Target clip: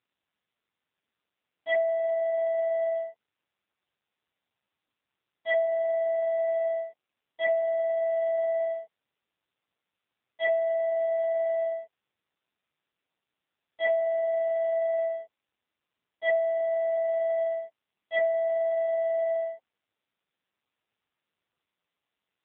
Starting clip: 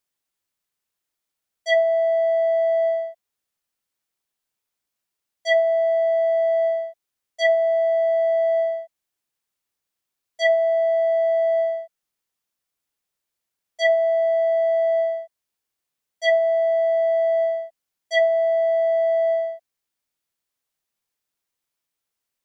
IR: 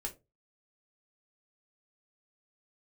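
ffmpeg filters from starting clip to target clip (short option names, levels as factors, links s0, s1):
-filter_complex "[0:a]asplit=3[s0][s1][s2];[s0]afade=t=out:st=17.34:d=0.02[s3];[s1]bandreject=f=1600:w=21,afade=t=in:st=17.34:d=0.02,afade=t=out:st=18.36:d=0.02[s4];[s2]afade=t=in:st=18.36:d=0.02[s5];[s3][s4][s5]amix=inputs=3:normalize=0,asplit=2[s6][s7];[s7]alimiter=limit=0.0944:level=0:latency=1:release=18,volume=0.794[s8];[s6][s8]amix=inputs=2:normalize=0,volume=0.376" -ar 8000 -c:a libopencore_amrnb -b:a 5900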